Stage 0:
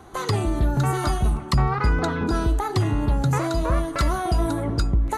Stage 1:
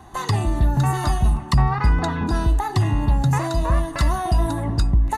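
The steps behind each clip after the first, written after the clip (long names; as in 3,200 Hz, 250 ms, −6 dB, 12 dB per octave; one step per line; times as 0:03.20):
comb filter 1.1 ms, depth 53%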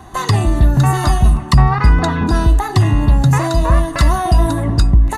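notch filter 860 Hz, Q 12
level +7 dB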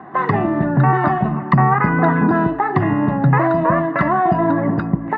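Chebyshev band-pass filter 160–1,900 Hz, order 3
level +3.5 dB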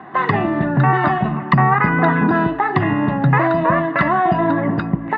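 parametric band 3,300 Hz +10 dB 1.5 octaves
level −1 dB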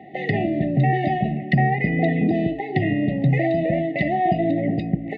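linear-phase brick-wall band-stop 800–1,800 Hz
level −3 dB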